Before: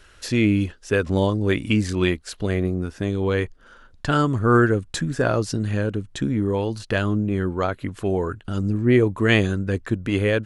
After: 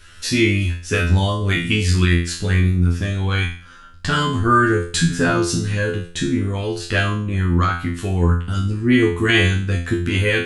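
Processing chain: bell 580 Hz -11.5 dB 1.7 oct; resonator 86 Hz, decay 0.44 s, harmonics all, mix 100%; maximiser +23.5 dB; gain -3.5 dB

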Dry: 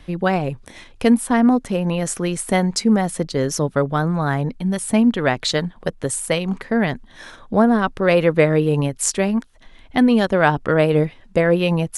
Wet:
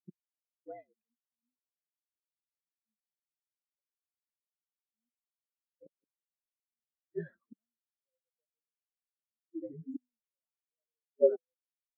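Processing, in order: on a send: frequency-shifting echo 0.436 s, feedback 65%, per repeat -64 Hz, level -18.5 dB; on the sum: flipped gate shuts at -20 dBFS, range -38 dB; Bessel high-pass 230 Hz, order 2; spectral expander 4:1; gain +4.5 dB

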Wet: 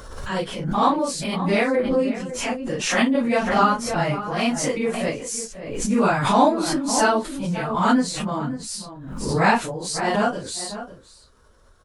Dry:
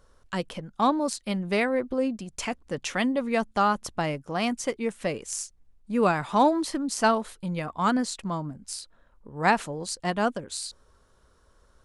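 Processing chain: phase scrambler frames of 0.1 s; outdoor echo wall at 94 m, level -12 dB; backwards sustainer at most 50 dB/s; gain +4 dB

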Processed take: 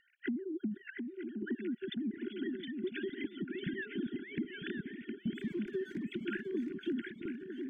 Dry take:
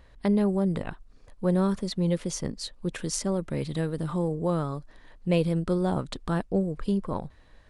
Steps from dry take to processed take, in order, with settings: sine-wave speech; brick-wall FIR band-stop 400–1400 Hz; vocal rider within 3 dB 2 s; treble ducked by the level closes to 1100 Hz, closed at -22.5 dBFS; 5.35–6.03 backlash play -46 dBFS; compressor 6:1, threshold -39 dBFS, peak gain reduction 17 dB; swung echo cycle 0.951 s, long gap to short 3:1, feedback 36%, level -5.5 dB; cascading phaser rising 1.8 Hz; gain +4 dB

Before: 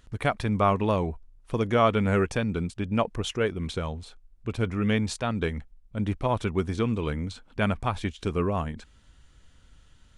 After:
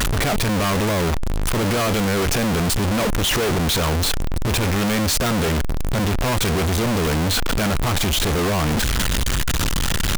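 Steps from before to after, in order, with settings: infinite clipping; gain +8.5 dB

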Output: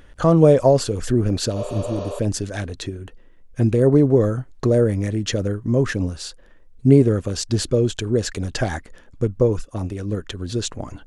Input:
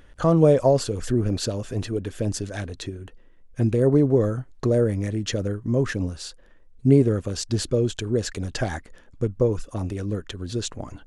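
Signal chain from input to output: 1.58–2.17 spectral repair 390–6800 Hz before; 9.61–10.17 upward expander 1.5:1, over -40 dBFS; gain +3.5 dB

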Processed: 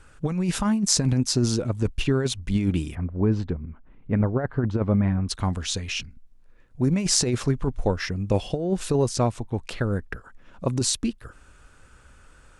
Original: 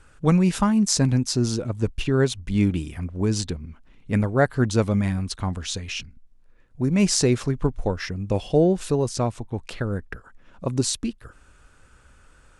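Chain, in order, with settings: 2.95–5.29 LPF 1500 Hz 12 dB/oct; negative-ratio compressor -20 dBFS, ratio -0.5

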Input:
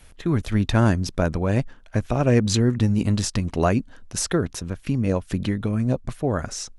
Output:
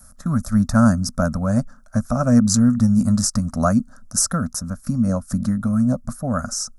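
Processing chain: EQ curve 140 Hz 0 dB, 240 Hz +9 dB, 370 Hz -25 dB, 580 Hz +3 dB, 930 Hz -5 dB, 1300 Hz +9 dB, 2100 Hz -16 dB, 3000 Hz -24 dB, 5200 Hz +5 dB, 11000 Hz +11 dB

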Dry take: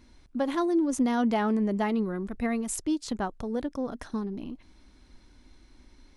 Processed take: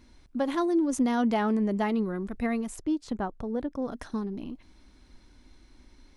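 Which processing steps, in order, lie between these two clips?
2.67–3.82 high shelf 2700 Hz -11.5 dB

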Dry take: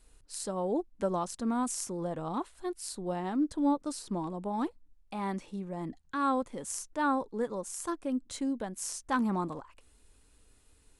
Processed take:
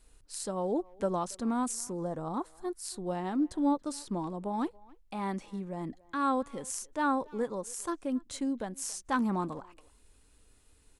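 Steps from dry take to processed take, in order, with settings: 1.73–2.85 bell 2800 Hz -11 dB 0.87 oct; speakerphone echo 0.28 s, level -23 dB

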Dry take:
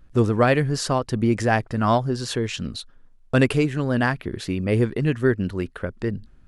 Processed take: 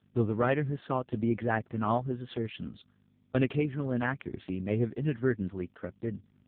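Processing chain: hum 50 Hz, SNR 27 dB; gain -8 dB; AMR-NB 4.75 kbps 8000 Hz

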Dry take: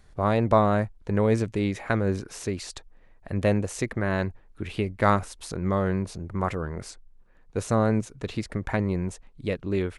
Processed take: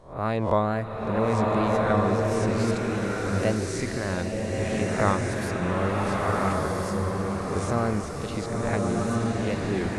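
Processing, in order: spectral swells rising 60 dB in 0.42 s; wow and flutter 110 cents; bloom reverb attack 1.4 s, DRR -3 dB; gain -4 dB

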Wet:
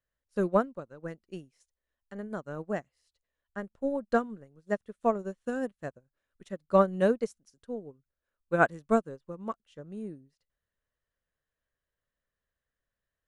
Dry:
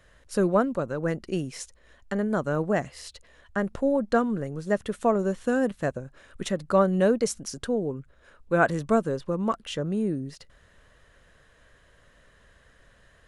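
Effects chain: upward expander 2.5:1, over -38 dBFS

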